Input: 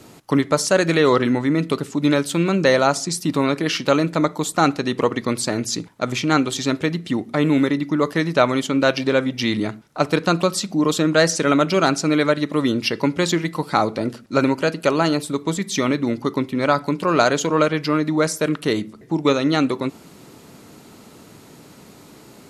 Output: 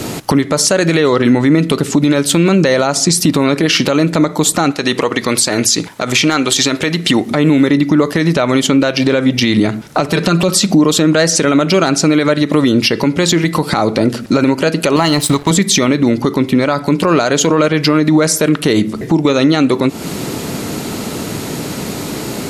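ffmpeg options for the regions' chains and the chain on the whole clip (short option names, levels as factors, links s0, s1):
-filter_complex "[0:a]asettb=1/sr,asplit=3[s0][s1][s2];[s0]atrim=end=4.724[s3];[s1]atrim=start=4.72:end=7.31,asetpts=PTS-STARTPTS,afade=t=in:d=0.004:c=qsin,afade=t=out:st=2.586:d=0.004:c=qsin,lowshelf=f=420:g=-10.5,asoftclip=type=hard:threshold=0.398[s4];[s2]atrim=start=7.306[s5];[s3][s4]acrossfade=d=0.004:c1=hsin:c2=qsin[s6];[s6][s5]acrossfade=d=0.004:c1=qsin:c2=hsin,asettb=1/sr,asplit=3[s7][s8][s9];[s7]atrim=end=10.084[s10];[s8]atrim=start=10.08:end=10.49,asetpts=PTS-STARTPTS,afade=t=in:d=0.004:c=qsin,afade=t=out:st=0.406:d=0.004:c=qsin,aecho=1:1:5.1:0.67,atrim=end_sample=18081,acompressor=threshold=0.0562:ratio=1.5:attack=3.2:release=140:knee=1:detection=peak[s11];[s9]atrim=start=10.486[s12];[s10][s11]acrossfade=d=0.004:c1=hsin:c2=qsin[s13];[s13][s12]acrossfade=d=0.004:c1=qsin:c2=hsin,asettb=1/sr,asplit=3[s14][s15][s16];[s14]atrim=end=14.964[s17];[s15]atrim=start=14.96:end=15.51,asetpts=PTS-STARTPTS,afade=t=in:d=0.004:c=qsin,afade=t=out:st=0.546:d=0.004:c=qsin,aecho=1:1:1:0.55,atrim=end_sample=24255,aeval=exprs='sgn(val(0))*max(abs(val(0))-0.01,0)':c=same,equalizer=f=220:w=1.5:g=-7.5[s18];[s16]atrim=start=15.506[s19];[s17][s18]acrossfade=d=0.004:c1=hsin:c2=qsin[s20];[s20][s19]acrossfade=d=0.004:c1=qsin:c2=hsin,equalizer=f=1100:w=1.5:g=-3,acompressor=threshold=0.0355:ratio=6,alimiter=level_in=15.8:limit=0.891:release=50:level=0:latency=1,volume=0.891"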